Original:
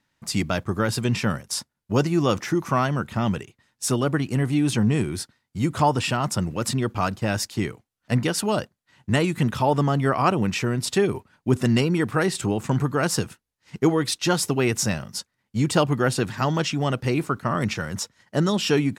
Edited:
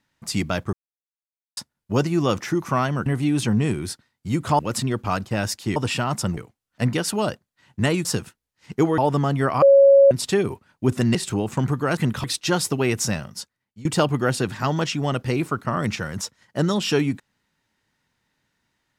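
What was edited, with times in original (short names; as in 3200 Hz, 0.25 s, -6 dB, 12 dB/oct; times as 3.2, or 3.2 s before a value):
0.73–1.57 mute
3.06–4.36 cut
5.89–6.5 move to 7.67
9.35–9.62 swap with 13.09–14.02
10.26–10.75 bleep 553 Hz -8.5 dBFS
11.79–12.27 cut
14.74–15.63 fade out equal-power, to -22.5 dB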